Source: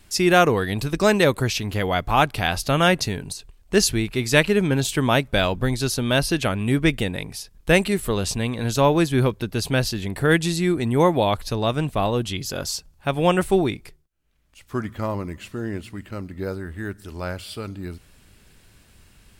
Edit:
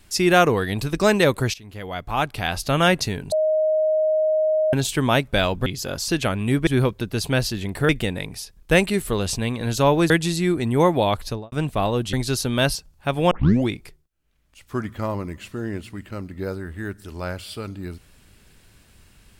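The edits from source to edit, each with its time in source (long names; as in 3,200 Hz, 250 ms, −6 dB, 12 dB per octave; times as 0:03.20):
0:01.54–0:02.81: fade in linear, from −19 dB
0:03.32–0:04.73: beep over 624 Hz −16.5 dBFS
0:05.66–0:06.28: swap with 0:12.33–0:12.75
0:09.08–0:10.30: move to 0:06.87
0:11.45–0:11.72: fade out and dull
0:13.31: tape start 0.38 s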